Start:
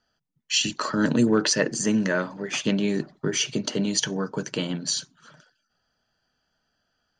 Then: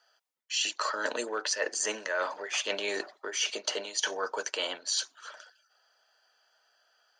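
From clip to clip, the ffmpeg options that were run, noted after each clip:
ffmpeg -i in.wav -af "highpass=frequency=530:width=0.5412,highpass=frequency=530:width=1.3066,areverse,acompressor=threshold=-35dB:ratio=6,areverse,volume=6.5dB" out.wav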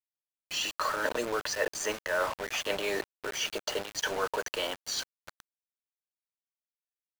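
ffmpeg -i in.wav -af "acrusher=bits=5:mix=0:aa=0.000001,highshelf=frequency=3000:gain=-9,volume=2.5dB" out.wav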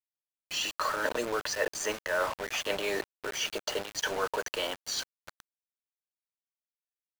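ffmpeg -i in.wav -af anull out.wav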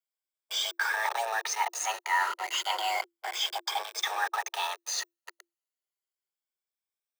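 ffmpeg -i in.wav -af "afftfilt=real='re*pow(10,10/40*sin(2*PI*(1.5*log(max(b,1)*sr/1024/100)/log(2)-(0.32)*(pts-256)/sr)))':imag='im*pow(10,10/40*sin(2*PI*(1.5*log(max(b,1)*sr/1024/100)/log(2)-(0.32)*(pts-256)/sr)))':win_size=1024:overlap=0.75,afreqshift=340" out.wav

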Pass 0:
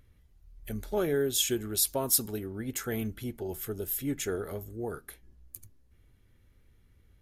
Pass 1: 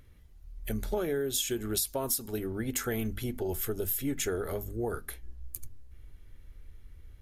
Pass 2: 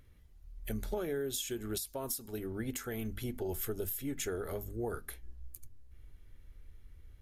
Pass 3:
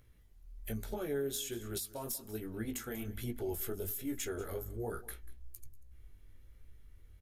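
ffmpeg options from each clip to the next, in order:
ffmpeg -i in.wav -af "bandreject=frequency=50:width_type=h:width=6,bandreject=frequency=100:width_type=h:width=6,bandreject=frequency=150:width_type=h:width=6,bandreject=frequency=200:width_type=h:width=6,bandreject=frequency=250:width_type=h:width=6,asubboost=boost=4:cutoff=68,acompressor=threshold=-32dB:ratio=16,volume=5dB" out.wav
ffmpeg -i in.wav -af "alimiter=limit=-21dB:level=0:latency=1:release=435,volume=-4dB" out.wav
ffmpeg -i in.wav -filter_complex "[0:a]acrossover=split=6100[link_01][link_02];[link_01]flanger=delay=17:depth=4.8:speed=1.2[link_03];[link_02]asoftclip=type=tanh:threshold=-34.5dB[link_04];[link_03][link_04]amix=inputs=2:normalize=0,aecho=1:1:190:0.119,volume=1dB" out.wav

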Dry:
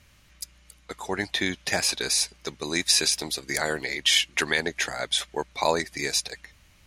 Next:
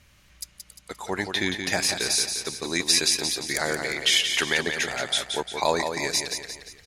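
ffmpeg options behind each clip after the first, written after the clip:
ffmpeg -i in.wav -af "aecho=1:1:175|350|525|700|875:0.473|0.218|0.1|0.0461|0.0212" out.wav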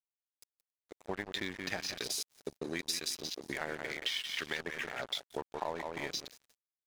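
ffmpeg -i in.wav -af "afwtdn=0.0355,acompressor=threshold=-34dB:ratio=4,aeval=exprs='sgn(val(0))*max(abs(val(0))-0.00501,0)':channel_layout=same" out.wav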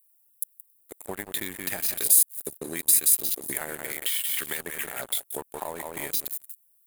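ffmpeg -i in.wav -filter_complex "[0:a]asplit=2[link_01][link_02];[link_02]acompressor=threshold=-44dB:ratio=6,volume=1dB[link_03];[link_01][link_03]amix=inputs=2:normalize=0,aexciter=amount=14.5:drive=7.4:freq=8300" out.wav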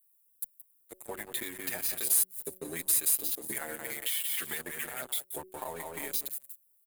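ffmpeg -i in.wav -filter_complex "[0:a]asoftclip=type=tanh:threshold=-14.5dB,bandreject=frequency=186.6:width_type=h:width=4,bandreject=frequency=373.2:width_type=h:width=4,bandreject=frequency=559.8:width_type=h:width=4,asplit=2[link_01][link_02];[link_02]adelay=7,afreqshift=0.31[link_03];[link_01][link_03]amix=inputs=2:normalize=1,volume=-1dB" out.wav

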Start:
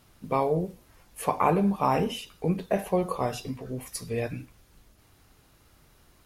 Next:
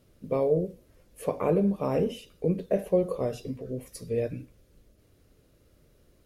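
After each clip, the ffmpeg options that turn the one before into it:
ffmpeg -i in.wav -af "lowshelf=frequency=670:width_type=q:width=3:gain=6.5,volume=-8dB" out.wav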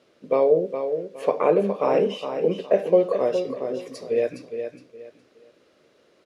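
ffmpeg -i in.wav -af "highpass=390,lowpass=4700,aecho=1:1:414|828|1242:0.398|0.104|0.0269,volume=8.5dB" out.wav

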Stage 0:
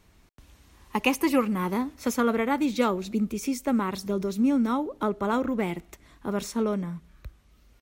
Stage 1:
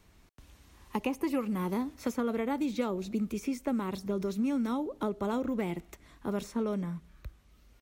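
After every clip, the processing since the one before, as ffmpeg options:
ffmpeg -i in.wav -filter_complex "[0:a]acrossover=split=870|2600[link_01][link_02][link_03];[link_01]acompressor=threshold=-26dB:ratio=4[link_04];[link_02]acompressor=threshold=-44dB:ratio=4[link_05];[link_03]acompressor=threshold=-47dB:ratio=4[link_06];[link_04][link_05][link_06]amix=inputs=3:normalize=0,volume=-2dB" out.wav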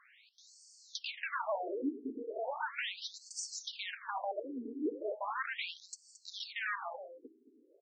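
ffmpeg -i in.wav -af "aeval=exprs='0.0158*(abs(mod(val(0)/0.0158+3,4)-2)-1)':channel_layout=same,aecho=1:1:222:0.237,afftfilt=real='re*between(b*sr/1024,310*pow(6300/310,0.5+0.5*sin(2*PI*0.37*pts/sr))/1.41,310*pow(6300/310,0.5+0.5*sin(2*PI*0.37*pts/sr))*1.41)':imag='im*between(b*sr/1024,310*pow(6300/310,0.5+0.5*sin(2*PI*0.37*pts/sr))/1.41,310*pow(6300/310,0.5+0.5*sin(2*PI*0.37*pts/sr))*1.41)':win_size=1024:overlap=0.75,volume=10dB" out.wav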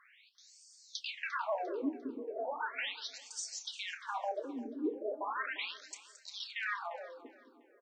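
ffmpeg -i in.wav -filter_complex "[0:a]asplit=2[link_01][link_02];[link_02]adelay=29,volume=-12dB[link_03];[link_01][link_03]amix=inputs=2:normalize=0,aecho=1:1:349|698|1047:0.126|0.0428|0.0146" out.wav

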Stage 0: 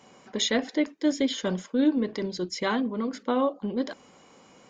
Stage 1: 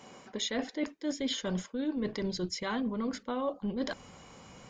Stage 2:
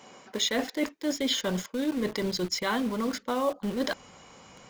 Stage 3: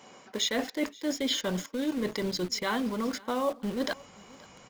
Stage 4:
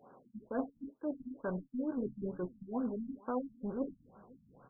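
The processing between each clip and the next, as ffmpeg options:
ffmpeg -i in.wav -af "asubboost=boost=6.5:cutoff=120,areverse,acompressor=threshold=-32dB:ratio=10,areverse,volume=2.5dB" out.wav
ffmpeg -i in.wav -filter_complex "[0:a]lowshelf=frequency=260:gain=-7,asplit=2[link_01][link_02];[link_02]acrusher=bits=6:mix=0:aa=0.000001,volume=-3.5dB[link_03];[link_01][link_03]amix=inputs=2:normalize=0,volume=2.5dB" out.wav
ffmpeg -i in.wav -af "aecho=1:1:527:0.0668,volume=-1.5dB" out.wav
ffmpeg -i in.wav -af "flanger=delay=7.1:depth=1.1:regen=70:speed=1.3:shape=sinusoidal,afftfilt=real='re*lt(b*sr/1024,240*pow(1700/240,0.5+0.5*sin(2*PI*2.2*pts/sr)))':imag='im*lt(b*sr/1024,240*pow(1700/240,0.5+0.5*sin(2*PI*2.2*pts/sr)))':win_size=1024:overlap=0.75,volume=-1dB" out.wav

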